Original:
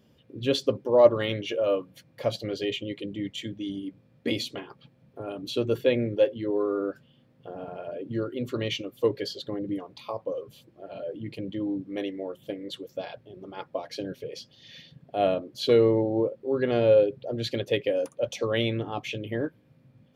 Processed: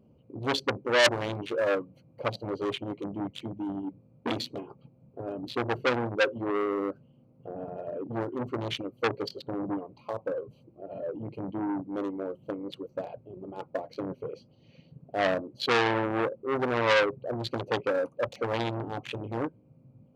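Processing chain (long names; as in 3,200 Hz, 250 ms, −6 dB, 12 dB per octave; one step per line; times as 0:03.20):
adaptive Wiener filter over 25 samples
saturating transformer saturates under 4,000 Hz
level +2 dB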